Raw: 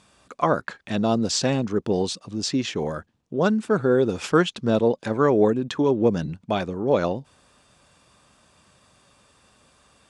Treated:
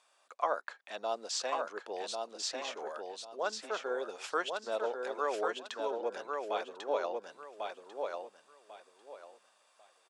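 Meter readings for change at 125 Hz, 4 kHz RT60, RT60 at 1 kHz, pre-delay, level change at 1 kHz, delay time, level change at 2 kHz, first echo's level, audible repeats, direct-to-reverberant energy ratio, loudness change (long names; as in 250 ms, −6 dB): below −40 dB, no reverb audible, no reverb audible, no reverb audible, −7.5 dB, 1,095 ms, −8.5 dB, −4.0 dB, 3, no reverb audible, −14.0 dB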